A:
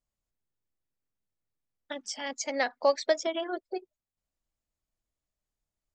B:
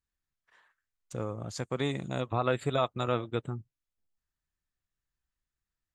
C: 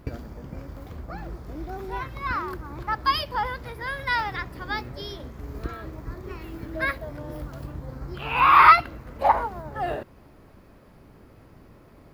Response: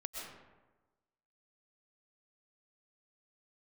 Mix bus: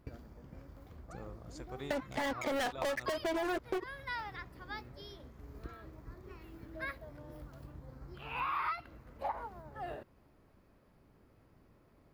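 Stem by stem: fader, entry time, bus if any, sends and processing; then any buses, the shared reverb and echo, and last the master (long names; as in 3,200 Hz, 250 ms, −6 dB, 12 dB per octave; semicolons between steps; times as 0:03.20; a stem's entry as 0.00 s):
+1.0 dB, 0.00 s, bus A, no send, downward expander −48 dBFS; Butterworth low-pass 2,200 Hz; leveller curve on the samples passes 5
−14.0 dB, 0.00 s, bus A, no send, no processing
−14.0 dB, 0.00 s, no bus, no send, no processing
bus A: 0.0 dB, soft clipping −21.5 dBFS, distortion −13 dB; downward compressor, threshold −26 dBFS, peak gain reduction 3.5 dB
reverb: not used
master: downward compressor 6 to 1, threshold −33 dBFS, peak gain reduction 10.5 dB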